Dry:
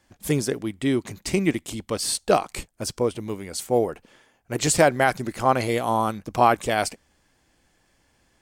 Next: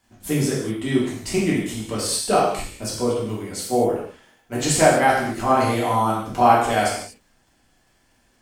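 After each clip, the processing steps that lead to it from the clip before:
surface crackle 31 per second −48 dBFS
reverb whose tail is shaped and stops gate 270 ms falling, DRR −6.5 dB
level −5 dB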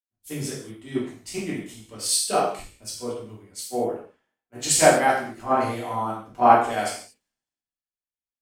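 low-shelf EQ 120 Hz −7.5 dB
multiband upward and downward expander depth 100%
level −6.5 dB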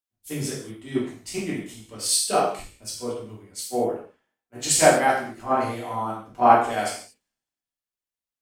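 speech leveller within 3 dB 2 s
level −1.5 dB

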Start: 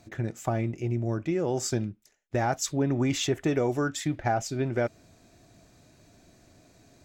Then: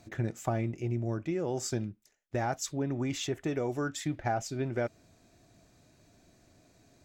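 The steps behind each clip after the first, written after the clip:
speech leveller within 4 dB 0.5 s
level −4.5 dB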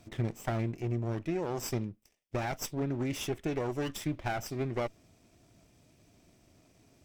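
lower of the sound and its delayed copy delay 0.37 ms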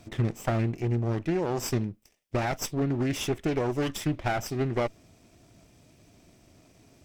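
highs frequency-modulated by the lows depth 0.36 ms
level +5.5 dB

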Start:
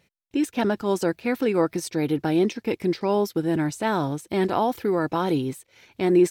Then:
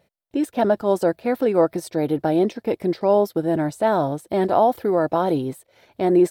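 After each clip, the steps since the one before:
graphic EQ with 15 bands 630 Hz +11 dB, 2,500 Hz −6 dB, 6,300 Hz −7 dB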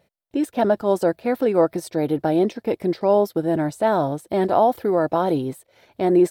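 no processing that can be heard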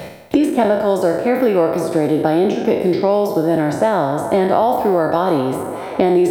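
peak hold with a decay on every bin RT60 0.73 s
delay with a band-pass on its return 199 ms, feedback 43%, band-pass 980 Hz, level −13 dB
multiband upward and downward compressor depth 100%
level +2 dB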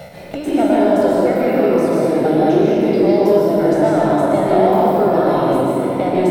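in parallel at −11 dB: hard clipping −13.5 dBFS, distortion −10 dB
on the sum: convolution reverb RT60 2.7 s, pre-delay 120 ms, DRR −4.5 dB
level −9.5 dB

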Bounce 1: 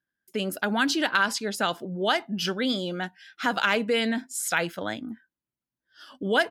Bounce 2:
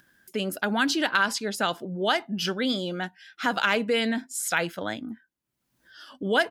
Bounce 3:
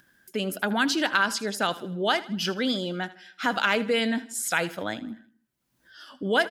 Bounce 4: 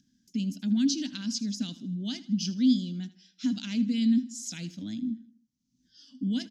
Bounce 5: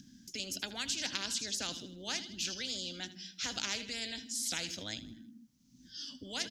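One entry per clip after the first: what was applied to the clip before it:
upward compression, threshold −43 dBFS
repeating echo 79 ms, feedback 45%, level −17.5 dB
drawn EQ curve 140 Hz 0 dB, 260 Hz +10 dB, 400 Hz −22 dB, 830 Hz −28 dB, 1,300 Hz −29 dB, 2,500 Hz −12 dB, 6,200 Hz +5 dB, 9,200 Hz −17 dB, 13,000 Hz −21 dB; level −3 dB
every bin compressed towards the loudest bin 10 to 1; level −2 dB

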